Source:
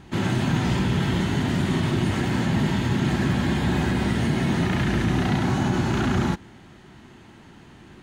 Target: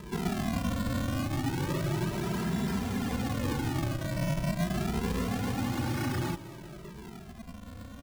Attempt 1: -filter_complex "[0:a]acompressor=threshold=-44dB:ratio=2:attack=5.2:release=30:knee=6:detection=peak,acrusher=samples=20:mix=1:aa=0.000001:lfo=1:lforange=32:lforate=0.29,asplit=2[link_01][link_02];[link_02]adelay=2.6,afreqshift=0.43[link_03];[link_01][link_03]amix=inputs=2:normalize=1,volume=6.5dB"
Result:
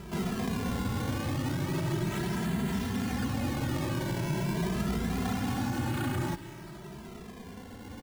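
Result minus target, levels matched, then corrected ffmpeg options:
sample-and-hold swept by an LFO: distortion −8 dB
-filter_complex "[0:a]acompressor=threshold=-44dB:ratio=2:attack=5.2:release=30:knee=6:detection=peak,acrusher=samples=60:mix=1:aa=0.000001:lfo=1:lforange=96:lforate=0.29,asplit=2[link_01][link_02];[link_02]adelay=2.6,afreqshift=0.43[link_03];[link_01][link_03]amix=inputs=2:normalize=1,volume=6.5dB"

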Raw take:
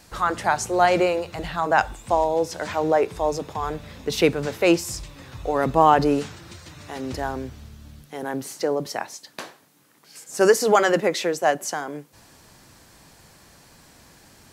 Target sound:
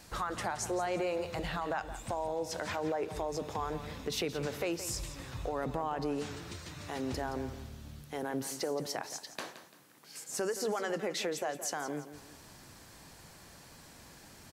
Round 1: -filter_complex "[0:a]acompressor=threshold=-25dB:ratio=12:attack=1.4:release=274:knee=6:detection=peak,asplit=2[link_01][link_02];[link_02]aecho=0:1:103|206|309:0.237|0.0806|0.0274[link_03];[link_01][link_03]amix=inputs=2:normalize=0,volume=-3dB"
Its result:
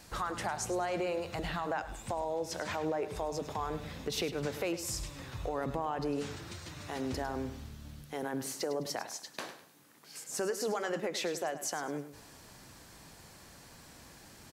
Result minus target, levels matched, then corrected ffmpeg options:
echo 68 ms early
-filter_complex "[0:a]acompressor=threshold=-25dB:ratio=12:attack=1.4:release=274:knee=6:detection=peak,asplit=2[link_01][link_02];[link_02]aecho=0:1:171|342|513:0.237|0.0806|0.0274[link_03];[link_01][link_03]amix=inputs=2:normalize=0,volume=-3dB"

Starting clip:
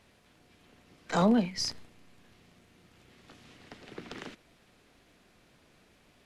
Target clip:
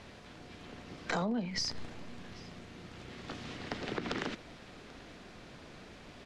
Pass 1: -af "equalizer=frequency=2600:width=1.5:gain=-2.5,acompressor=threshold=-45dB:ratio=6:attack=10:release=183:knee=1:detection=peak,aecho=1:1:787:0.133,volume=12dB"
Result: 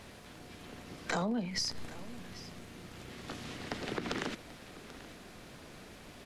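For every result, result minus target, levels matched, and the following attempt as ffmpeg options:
echo-to-direct +6 dB; 8,000 Hz band +3.0 dB
-af "equalizer=frequency=2600:width=1.5:gain=-2.5,acompressor=threshold=-45dB:ratio=6:attack=10:release=183:knee=1:detection=peak,aecho=1:1:787:0.0668,volume=12dB"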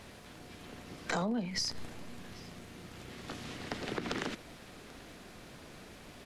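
8,000 Hz band +2.5 dB
-af "lowpass=5900,equalizer=frequency=2600:width=1.5:gain=-2.5,acompressor=threshold=-45dB:ratio=6:attack=10:release=183:knee=1:detection=peak,aecho=1:1:787:0.0668,volume=12dB"

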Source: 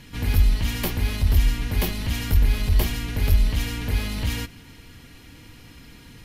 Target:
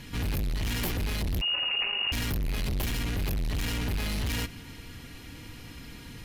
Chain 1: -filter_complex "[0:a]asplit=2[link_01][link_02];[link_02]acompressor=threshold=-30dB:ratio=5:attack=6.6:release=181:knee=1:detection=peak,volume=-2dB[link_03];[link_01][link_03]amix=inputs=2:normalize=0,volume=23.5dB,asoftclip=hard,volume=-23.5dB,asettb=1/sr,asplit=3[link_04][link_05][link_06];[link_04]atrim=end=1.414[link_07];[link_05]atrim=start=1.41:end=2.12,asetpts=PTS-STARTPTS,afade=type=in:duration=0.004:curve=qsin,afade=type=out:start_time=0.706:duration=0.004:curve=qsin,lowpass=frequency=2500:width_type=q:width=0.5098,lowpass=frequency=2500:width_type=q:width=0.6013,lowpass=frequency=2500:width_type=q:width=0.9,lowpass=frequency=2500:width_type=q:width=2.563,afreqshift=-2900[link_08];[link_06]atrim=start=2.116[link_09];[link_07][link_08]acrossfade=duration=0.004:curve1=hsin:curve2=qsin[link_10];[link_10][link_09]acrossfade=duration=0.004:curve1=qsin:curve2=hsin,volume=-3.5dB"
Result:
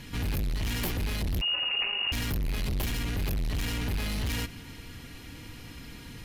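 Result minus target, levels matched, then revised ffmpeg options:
downward compressor: peak gain reduction +5 dB
-filter_complex "[0:a]asplit=2[link_01][link_02];[link_02]acompressor=threshold=-23.5dB:ratio=5:attack=6.6:release=181:knee=1:detection=peak,volume=-2dB[link_03];[link_01][link_03]amix=inputs=2:normalize=0,volume=23.5dB,asoftclip=hard,volume=-23.5dB,asettb=1/sr,asplit=3[link_04][link_05][link_06];[link_04]atrim=end=1.414[link_07];[link_05]atrim=start=1.41:end=2.12,asetpts=PTS-STARTPTS,afade=type=in:duration=0.004:curve=qsin,afade=type=out:start_time=0.706:duration=0.004:curve=qsin,lowpass=frequency=2500:width_type=q:width=0.5098,lowpass=frequency=2500:width_type=q:width=0.6013,lowpass=frequency=2500:width_type=q:width=0.9,lowpass=frequency=2500:width_type=q:width=2.563,afreqshift=-2900[link_08];[link_06]atrim=start=2.116[link_09];[link_07][link_08]acrossfade=duration=0.004:curve1=hsin:curve2=qsin[link_10];[link_10][link_09]acrossfade=duration=0.004:curve1=qsin:curve2=hsin,volume=-3.5dB"

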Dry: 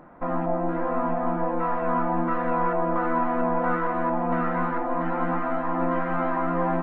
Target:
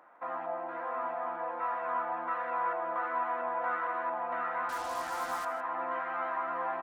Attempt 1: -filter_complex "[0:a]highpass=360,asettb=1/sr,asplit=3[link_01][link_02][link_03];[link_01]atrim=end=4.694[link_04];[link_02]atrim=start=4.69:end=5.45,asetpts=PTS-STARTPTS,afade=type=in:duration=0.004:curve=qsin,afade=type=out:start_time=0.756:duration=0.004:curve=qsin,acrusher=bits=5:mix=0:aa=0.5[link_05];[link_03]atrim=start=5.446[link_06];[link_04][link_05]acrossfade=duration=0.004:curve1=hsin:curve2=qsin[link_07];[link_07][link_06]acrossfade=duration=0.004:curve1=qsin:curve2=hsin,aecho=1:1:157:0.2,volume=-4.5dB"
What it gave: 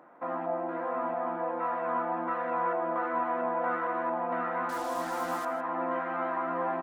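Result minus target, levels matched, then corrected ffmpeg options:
500 Hz band +3.0 dB
-filter_complex "[0:a]highpass=800,asettb=1/sr,asplit=3[link_01][link_02][link_03];[link_01]atrim=end=4.694[link_04];[link_02]atrim=start=4.69:end=5.45,asetpts=PTS-STARTPTS,afade=type=in:duration=0.004:curve=qsin,afade=type=out:start_time=0.756:duration=0.004:curve=qsin,acrusher=bits=5:mix=0:aa=0.5[link_05];[link_03]atrim=start=5.446[link_06];[link_04][link_05]acrossfade=duration=0.004:curve1=hsin:curve2=qsin[link_07];[link_07][link_06]acrossfade=duration=0.004:curve1=qsin:curve2=hsin,aecho=1:1:157:0.2,volume=-4.5dB"

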